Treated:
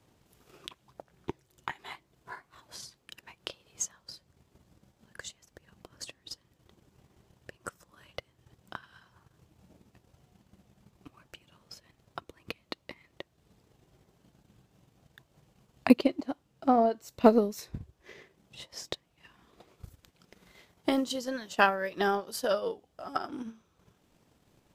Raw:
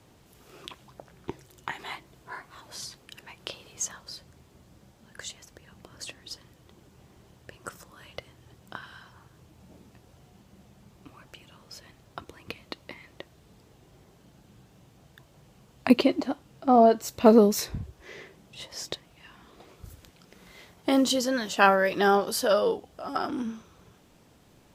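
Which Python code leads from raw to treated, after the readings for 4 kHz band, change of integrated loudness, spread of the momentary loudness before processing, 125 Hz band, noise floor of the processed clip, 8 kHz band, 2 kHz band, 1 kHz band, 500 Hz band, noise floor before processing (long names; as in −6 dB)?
−6.0 dB, −6.0 dB, 23 LU, −6.5 dB, −71 dBFS, −6.0 dB, −4.5 dB, −5.0 dB, −6.0 dB, −59 dBFS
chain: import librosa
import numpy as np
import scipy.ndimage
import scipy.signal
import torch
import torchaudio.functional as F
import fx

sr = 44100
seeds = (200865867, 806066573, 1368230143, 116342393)

y = fx.transient(x, sr, attack_db=8, sustain_db=-6)
y = y * librosa.db_to_amplitude(-8.5)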